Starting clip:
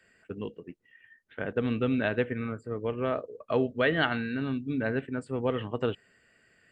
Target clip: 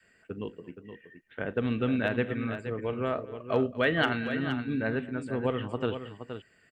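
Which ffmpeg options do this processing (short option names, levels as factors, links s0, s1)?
-af "adynamicequalizer=threshold=0.01:dfrequency=470:dqfactor=1.8:tfrequency=470:tqfactor=1.8:attack=5:release=100:ratio=0.375:range=1.5:mode=cutabove:tftype=bell,asoftclip=type=hard:threshold=0.188,aecho=1:1:41|226|471:0.119|0.106|0.335"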